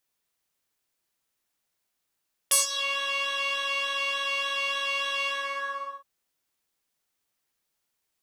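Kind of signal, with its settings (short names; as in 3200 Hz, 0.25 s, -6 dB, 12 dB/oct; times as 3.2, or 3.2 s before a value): synth patch with pulse-width modulation C#5, oscillator 2 square, interval +12 st, detune 25 cents, sub -18.5 dB, filter bandpass, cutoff 1000 Hz, Q 2.9, filter envelope 3.5 oct, filter decay 0.34 s, attack 10 ms, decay 0.14 s, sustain -18 dB, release 0.77 s, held 2.75 s, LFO 3.4 Hz, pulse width 27%, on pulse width 4%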